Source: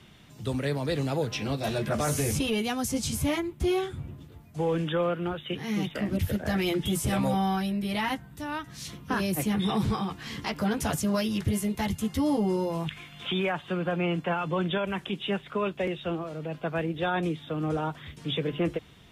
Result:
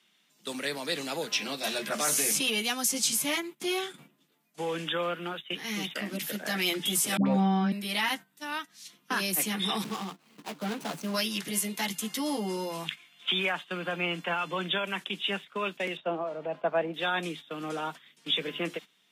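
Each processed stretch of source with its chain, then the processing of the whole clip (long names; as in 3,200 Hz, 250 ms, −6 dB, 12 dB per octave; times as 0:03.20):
0:07.17–0:07.72: low-pass filter 6,100 Hz + spectral tilt −4.5 dB per octave + all-pass dispersion highs, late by 91 ms, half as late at 740 Hz
0:09.84–0:11.14: running median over 25 samples + parametric band 100 Hz +3.5 dB 0.8 octaves
0:15.97–0:16.94: low-pass filter 1,100 Hz 6 dB per octave + parametric band 730 Hz +14 dB 0.99 octaves + notch filter 760 Hz, Q 8
whole clip: noise gate −36 dBFS, range −14 dB; Butterworth high-pass 170 Hz 48 dB per octave; tilt shelving filter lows −7.5 dB, about 1,200 Hz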